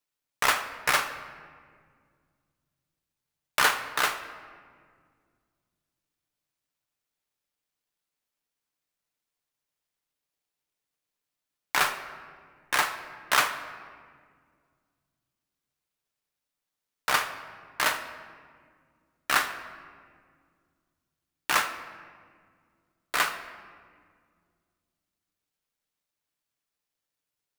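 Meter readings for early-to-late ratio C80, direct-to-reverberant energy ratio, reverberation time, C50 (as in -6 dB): 11.5 dB, 6.0 dB, 1.9 s, 10.0 dB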